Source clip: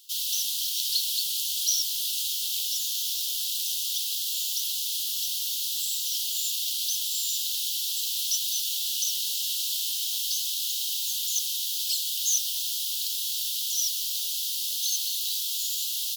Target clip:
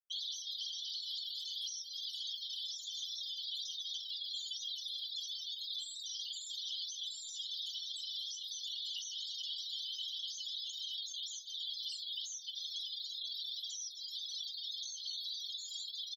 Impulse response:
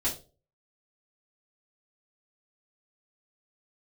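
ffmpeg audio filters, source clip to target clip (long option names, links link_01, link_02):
-af "afftfilt=real='re*gte(hypot(re,im),0.0631)':imag='im*gte(hypot(re,im),0.0631)':win_size=1024:overlap=0.75,equalizer=frequency=10000:width_type=o:width=2.2:gain=-3.5,aecho=1:1:4.6:0.43,adynamicequalizer=threshold=0.00398:dfrequency=3900:dqfactor=1.7:tfrequency=3900:tqfactor=1.7:attack=5:release=100:ratio=0.375:range=4:mode=cutabove:tftype=bell,acompressor=threshold=-39dB:ratio=6,alimiter=level_in=16dB:limit=-24dB:level=0:latency=1:release=31,volume=-16dB,adynamicsmooth=sensitivity=1.5:basefreq=3600,aecho=1:1:19|45:0.282|0.133,volume=13.5dB"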